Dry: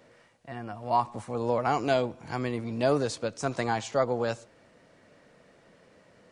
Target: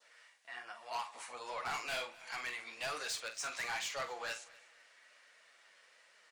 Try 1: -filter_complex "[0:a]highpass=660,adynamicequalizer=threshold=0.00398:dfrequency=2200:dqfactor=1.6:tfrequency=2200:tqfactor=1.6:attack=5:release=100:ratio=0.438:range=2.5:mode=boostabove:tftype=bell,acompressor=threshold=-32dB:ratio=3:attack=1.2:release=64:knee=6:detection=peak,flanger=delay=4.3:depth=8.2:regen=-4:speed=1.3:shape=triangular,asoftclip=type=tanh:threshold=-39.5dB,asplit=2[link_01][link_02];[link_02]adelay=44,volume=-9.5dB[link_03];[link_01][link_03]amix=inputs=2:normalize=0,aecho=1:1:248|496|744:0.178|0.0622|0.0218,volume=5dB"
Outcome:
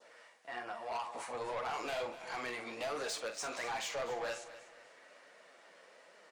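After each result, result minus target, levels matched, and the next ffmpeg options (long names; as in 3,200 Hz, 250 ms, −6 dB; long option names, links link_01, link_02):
downward compressor: peak gain reduction +10.5 dB; 500 Hz band +6.5 dB; echo-to-direct +7 dB
-filter_complex "[0:a]highpass=660,adynamicequalizer=threshold=0.00398:dfrequency=2200:dqfactor=1.6:tfrequency=2200:tqfactor=1.6:attack=5:release=100:ratio=0.438:range=2.5:mode=boostabove:tftype=bell,flanger=delay=4.3:depth=8.2:regen=-4:speed=1.3:shape=triangular,asoftclip=type=tanh:threshold=-39.5dB,asplit=2[link_01][link_02];[link_02]adelay=44,volume=-9.5dB[link_03];[link_01][link_03]amix=inputs=2:normalize=0,aecho=1:1:248|496|744:0.178|0.0622|0.0218,volume=5dB"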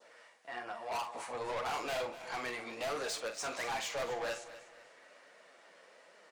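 500 Hz band +6.5 dB; echo-to-direct +7 dB
-filter_complex "[0:a]highpass=1600,adynamicequalizer=threshold=0.00398:dfrequency=2200:dqfactor=1.6:tfrequency=2200:tqfactor=1.6:attack=5:release=100:ratio=0.438:range=2.5:mode=boostabove:tftype=bell,flanger=delay=4.3:depth=8.2:regen=-4:speed=1.3:shape=triangular,asoftclip=type=tanh:threshold=-39.5dB,asplit=2[link_01][link_02];[link_02]adelay=44,volume=-9.5dB[link_03];[link_01][link_03]amix=inputs=2:normalize=0,aecho=1:1:248|496|744:0.178|0.0622|0.0218,volume=5dB"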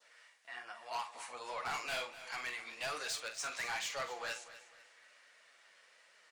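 echo-to-direct +7 dB
-filter_complex "[0:a]highpass=1600,adynamicequalizer=threshold=0.00398:dfrequency=2200:dqfactor=1.6:tfrequency=2200:tqfactor=1.6:attack=5:release=100:ratio=0.438:range=2.5:mode=boostabove:tftype=bell,flanger=delay=4.3:depth=8.2:regen=-4:speed=1.3:shape=triangular,asoftclip=type=tanh:threshold=-39.5dB,asplit=2[link_01][link_02];[link_02]adelay=44,volume=-9.5dB[link_03];[link_01][link_03]amix=inputs=2:normalize=0,aecho=1:1:248|496:0.0794|0.0278,volume=5dB"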